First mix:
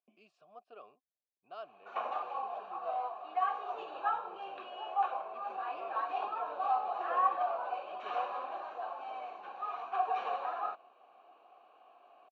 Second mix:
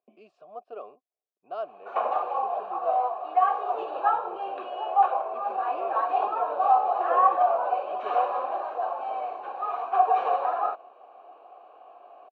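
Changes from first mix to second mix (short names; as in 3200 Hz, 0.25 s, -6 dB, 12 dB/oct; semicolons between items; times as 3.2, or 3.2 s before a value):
second sound: add low shelf 290 Hz -7 dB; master: add bell 500 Hz +14.5 dB 2.8 oct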